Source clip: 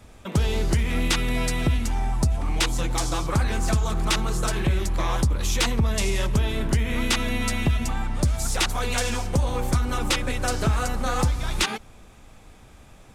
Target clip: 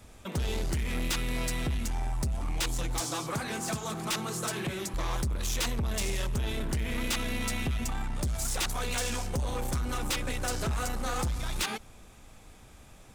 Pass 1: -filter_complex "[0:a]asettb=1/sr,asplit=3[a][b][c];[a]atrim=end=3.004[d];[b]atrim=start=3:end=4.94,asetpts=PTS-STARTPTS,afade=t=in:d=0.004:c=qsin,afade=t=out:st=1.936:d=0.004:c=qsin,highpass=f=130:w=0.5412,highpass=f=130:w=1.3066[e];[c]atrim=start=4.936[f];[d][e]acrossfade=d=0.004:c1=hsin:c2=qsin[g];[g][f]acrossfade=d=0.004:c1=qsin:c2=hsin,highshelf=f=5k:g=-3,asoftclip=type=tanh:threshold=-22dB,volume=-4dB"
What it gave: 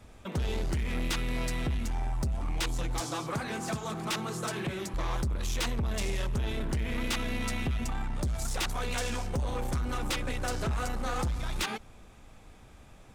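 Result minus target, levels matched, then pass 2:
8000 Hz band -4.0 dB
-filter_complex "[0:a]asettb=1/sr,asplit=3[a][b][c];[a]atrim=end=3.004[d];[b]atrim=start=3:end=4.94,asetpts=PTS-STARTPTS,afade=t=in:d=0.004:c=qsin,afade=t=out:st=1.936:d=0.004:c=qsin,highpass=f=130:w=0.5412,highpass=f=130:w=1.3066[e];[c]atrim=start=4.936[f];[d][e]acrossfade=d=0.004:c1=hsin:c2=qsin[g];[g][f]acrossfade=d=0.004:c1=qsin:c2=hsin,highshelf=f=5k:g=6,asoftclip=type=tanh:threshold=-22dB,volume=-4dB"

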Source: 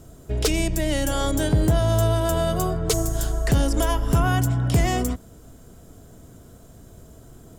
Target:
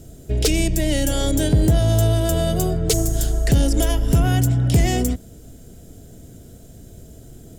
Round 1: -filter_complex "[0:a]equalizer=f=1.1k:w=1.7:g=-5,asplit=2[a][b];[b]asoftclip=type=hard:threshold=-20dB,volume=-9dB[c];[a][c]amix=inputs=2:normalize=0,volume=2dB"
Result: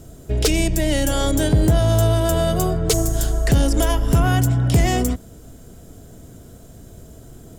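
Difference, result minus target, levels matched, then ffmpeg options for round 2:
1000 Hz band +4.0 dB
-filter_complex "[0:a]equalizer=f=1.1k:w=1.7:g=-15,asplit=2[a][b];[b]asoftclip=type=hard:threshold=-20dB,volume=-9dB[c];[a][c]amix=inputs=2:normalize=0,volume=2dB"

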